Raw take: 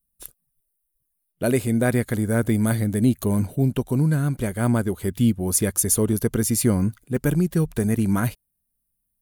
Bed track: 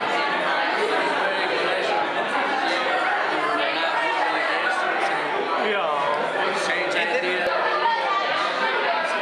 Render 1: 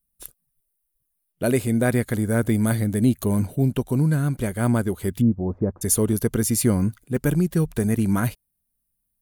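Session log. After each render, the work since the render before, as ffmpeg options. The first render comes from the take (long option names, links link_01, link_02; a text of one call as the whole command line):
ffmpeg -i in.wav -filter_complex "[0:a]asplit=3[link_01][link_02][link_03];[link_01]afade=type=out:start_time=5.2:duration=0.02[link_04];[link_02]lowpass=frequency=1000:width=0.5412,lowpass=frequency=1000:width=1.3066,afade=type=in:start_time=5.2:duration=0.02,afade=type=out:start_time=5.81:duration=0.02[link_05];[link_03]afade=type=in:start_time=5.81:duration=0.02[link_06];[link_04][link_05][link_06]amix=inputs=3:normalize=0" out.wav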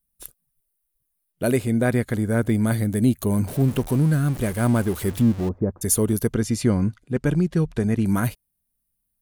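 ffmpeg -i in.wav -filter_complex "[0:a]asettb=1/sr,asplit=3[link_01][link_02][link_03];[link_01]atrim=end=1.564[link_04];[link_02]atrim=start=1.56:end=2.72,asetpts=PTS-STARTPTS,afade=type=in:duration=0.004:curve=qsin,afade=type=out:start_time=1.156:duration=0.004:curve=qsin,highshelf=frequency=7800:gain=-8.5[link_05];[link_03]atrim=start=2.716[link_06];[link_04][link_05]acrossfade=duration=0.004:curve1=hsin:curve2=qsin[link_07];[link_07][link_06]acrossfade=duration=0.004:curve1=qsin:curve2=hsin,asettb=1/sr,asplit=3[link_08][link_09][link_10];[link_08]atrim=end=3.474[link_11];[link_09]atrim=start=3.47:end=5.49,asetpts=PTS-STARTPTS,afade=type=in:duration=0.004:curve=qsin,afade=type=out:start_time=2.016:duration=0.004:curve=qsin,aeval=exprs='val(0)+0.5*0.0282*sgn(val(0))':channel_layout=same[link_12];[link_10]atrim=start=5.486[link_13];[link_11][link_12]acrossfade=duration=0.004:curve1=hsin:curve2=qsin[link_14];[link_14][link_13]acrossfade=duration=0.004:curve1=qsin:curve2=hsin,asplit=3[link_15][link_16][link_17];[link_15]afade=type=out:start_time=6.32:duration=0.02[link_18];[link_16]lowpass=5500,afade=type=in:start_time=6.32:duration=0.02,afade=type=out:start_time=8.04:duration=0.02[link_19];[link_17]afade=type=in:start_time=8.04:duration=0.02[link_20];[link_18][link_19][link_20]amix=inputs=3:normalize=0" out.wav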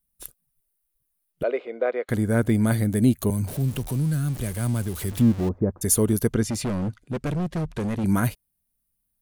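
ffmpeg -i in.wav -filter_complex "[0:a]asettb=1/sr,asplit=3[link_01][link_02][link_03];[link_01]atrim=end=1.434[link_04];[link_02]atrim=start=1.43:end=2.09,asetpts=PTS-STARTPTS,afade=type=in:duration=0.004:curve=qsin,afade=type=out:start_time=0.656:duration=0.004:curve=qsin,highpass=frequency=450:width=0.5412,highpass=frequency=450:width=1.3066,equalizer=frequency=490:width_type=q:width=4:gain=5,equalizer=frequency=890:width_type=q:width=4:gain=-6,equalizer=frequency=1700:width_type=q:width=4:gain=-9,equalizer=frequency=2700:width_type=q:width=4:gain=-5,lowpass=frequency=2800:width=0.5412,lowpass=frequency=2800:width=1.3066[link_05];[link_03]atrim=start=2.086[link_06];[link_04][link_05]acrossfade=duration=0.004:curve1=hsin:curve2=qsin[link_07];[link_07][link_06]acrossfade=duration=0.004:curve1=qsin:curve2=hsin,asettb=1/sr,asplit=3[link_08][link_09][link_10];[link_08]atrim=end=3.304[link_11];[link_09]atrim=start=3.3:end=5.12,asetpts=PTS-STARTPTS,afade=type=in:duration=0.004:curve=qsin,afade=type=out:start_time=1.816:duration=0.004:curve=qsin,acrossover=split=140|3000[link_12][link_13][link_14];[link_13]acompressor=threshold=-37dB:ratio=2:attack=3.2:release=140:knee=2.83:detection=peak[link_15];[link_12][link_15][link_14]amix=inputs=3:normalize=0[link_16];[link_10]atrim=start=5.116[link_17];[link_11][link_16]acrossfade=duration=0.004:curve1=hsin:curve2=qsin[link_18];[link_18][link_17]acrossfade=duration=0.004:curve1=qsin:curve2=hsin,asettb=1/sr,asplit=3[link_19][link_20][link_21];[link_19]atrim=end=6.434[link_22];[link_20]atrim=start=6.43:end=8.04,asetpts=PTS-STARTPTS,afade=type=in:duration=0.004:curve=qsin,afade=type=out:start_time=1.606:duration=0.004:curve=qsin,volume=23.5dB,asoftclip=hard,volume=-23.5dB[link_23];[link_21]atrim=start=8.036[link_24];[link_22][link_23]acrossfade=duration=0.004:curve1=hsin:curve2=qsin[link_25];[link_25][link_24]acrossfade=duration=0.004:curve1=qsin:curve2=hsin" out.wav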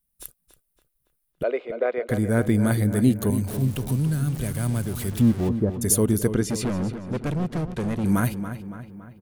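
ffmpeg -i in.wav -filter_complex "[0:a]asplit=2[link_01][link_02];[link_02]adelay=281,lowpass=frequency=3700:poles=1,volume=-10dB,asplit=2[link_03][link_04];[link_04]adelay=281,lowpass=frequency=3700:poles=1,volume=0.53,asplit=2[link_05][link_06];[link_06]adelay=281,lowpass=frequency=3700:poles=1,volume=0.53,asplit=2[link_07][link_08];[link_08]adelay=281,lowpass=frequency=3700:poles=1,volume=0.53,asplit=2[link_09][link_10];[link_10]adelay=281,lowpass=frequency=3700:poles=1,volume=0.53,asplit=2[link_11][link_12];[link_12]adelay=281,lowpass=frequency=3700:poles=1,volume=0.53[link_13];[link_01][link_03][link_05][link_07][link_09][link_11][link_13]amix=inputs=7:normalize=0" out.wav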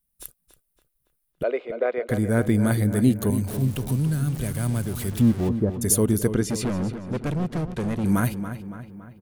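ffmpeg -i in.wav -af anull out.wav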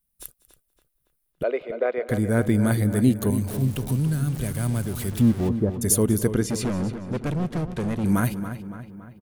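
ffmpeg -i in.wav -af "aecho=1:1:194:0.0794" out.wav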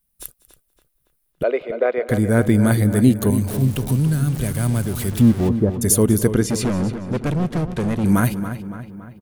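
ffmpeg -i in.wav -af "volume=5dB,alimiter=limit=-3dB:level=0:latency=1" out.wav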